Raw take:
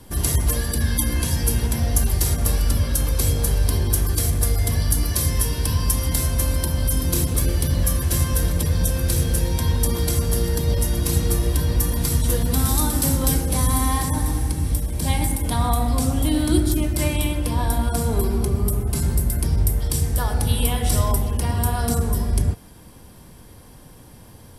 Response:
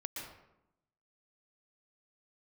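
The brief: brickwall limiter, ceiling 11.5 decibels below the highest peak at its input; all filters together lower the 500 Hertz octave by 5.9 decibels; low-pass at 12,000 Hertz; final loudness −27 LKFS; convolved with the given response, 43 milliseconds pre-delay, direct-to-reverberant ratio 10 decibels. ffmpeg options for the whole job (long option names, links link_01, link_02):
-filter_complex "[0:a]lowpass=12000,equalizer=frequency=500:width_type=o:gain=-7.5,alimiter=limit=-16dB:level=0:latency=1,asplit=2[link_01][link_02];[1:a]atrim=start_sample=2205,adelay=43[link_03];[link_02][link_03]afir=irnorm=-1:irlink=0,volume=-9.5dB[link_04];[link_01][link_04]amix=inputs=2:normalize=0,volume=-2dB"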